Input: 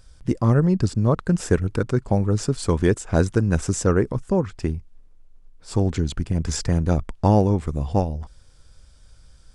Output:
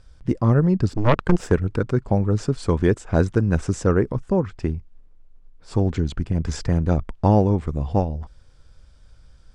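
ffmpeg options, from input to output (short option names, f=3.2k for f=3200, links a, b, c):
-filter_complex "[0:a]aemphasis=mode=reproduction:type=50fm,asplit=3[a][b][c];[a]afade=t=out:st=0.89:d=0.02[d];[b]aeval=exprs='0.501*(cos(1*acos(clip(val(0)/0.501,-1,1)))-cos(1*PI/2))+0.178*(cos(6*acos(clip(val(0)/0.501,-1,1)))-cos(6*PI/2))+0.0282*(cos(8*acos(clip(val(0)/0.501,-1,1)))-cos(8*PI/2))':c=same,afade=t=in:st=0.89:d=0.02,afade=t=out:st=1.5:d=0.02[e];[c]afade=t=in:st=1.5:d=0.02[f];[d][e][f]amix=inputs=3:normalize=0"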